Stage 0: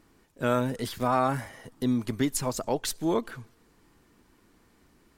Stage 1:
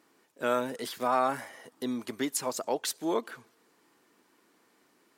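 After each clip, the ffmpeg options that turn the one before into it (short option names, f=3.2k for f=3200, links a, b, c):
-af "highpass=330,volume=-1dB"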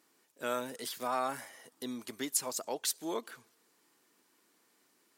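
-af "highshelf=f=3.3k:g=10,volume=-7.5dB"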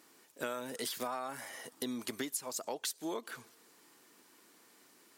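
-af "acompressor=threshold=-42dB:ratio=12,volume=7.5dB"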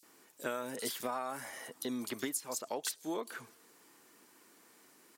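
-filter_complex "[0:a]acrossover=split=3900[a][b];[a]adelay=30[c];[c][b]amix=inputs=2:normalize=0,volume=1dB"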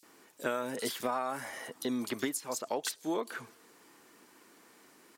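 -af "highshelf=f=5.9k:g=-6.5,volume=4.5dB"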